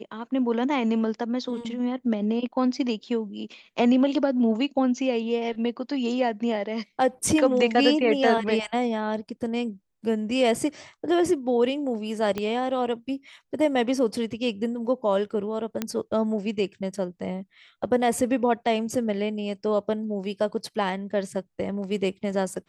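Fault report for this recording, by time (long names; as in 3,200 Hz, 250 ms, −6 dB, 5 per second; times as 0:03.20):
0:12.38: click −15 dBFS
0:15.82: click −12 dBFS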